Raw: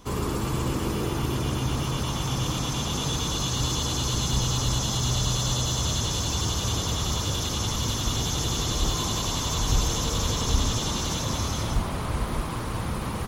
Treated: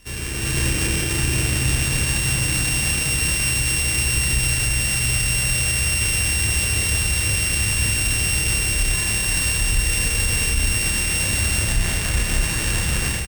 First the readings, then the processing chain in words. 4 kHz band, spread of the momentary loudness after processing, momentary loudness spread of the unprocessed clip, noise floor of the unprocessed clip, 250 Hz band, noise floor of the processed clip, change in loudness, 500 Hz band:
+4.0 dB, 3 LU, 4 LU, -30 dBFS, -0.5 dB, -23 dBFS, +7.5 dB, -1.0 dB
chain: sorted samples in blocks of 16 samples; ten-band graphic EQ 125 Hz -4 dB, 250 Hz -8 dB, 500 Hz -5 dB, 1 kHz -10 dB, 2 kHz +3 dB, 8 kHz +6 dB; level rider; peak limiter -10.5 dBFS, peak gain reduction 8.5 dB; doubling 30 ms -6 dB

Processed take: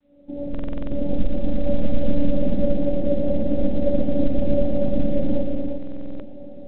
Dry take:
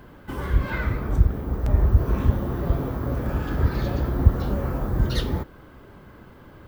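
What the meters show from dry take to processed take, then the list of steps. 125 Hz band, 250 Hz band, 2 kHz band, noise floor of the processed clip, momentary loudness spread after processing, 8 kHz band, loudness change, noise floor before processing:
-7.5 dB, +6.5 dB, under -10 dB, -35 dBFS, 11 LU, no reading, -0.5 dB, -47 dBFS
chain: fade-in on the opening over 0.88 s; bass shelf 64 Hz -7.5 dB; in parallel at -2 dB: compression 16:1, threshold -31 dBFS, peak gain reduction 21 dB; on the sum: robot voice 287 Hz; rippled Chebyshev low-pass 780 Hz, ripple 9 dB; multi-head delay 116 ms, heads all three, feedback 41%, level -7 dB; loudness maximiser +18 dB; buffer glitch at 0.50/5.78 s, samples 2048, times 8; trim -5 dB; µ-law 64 kbps 8 kHz

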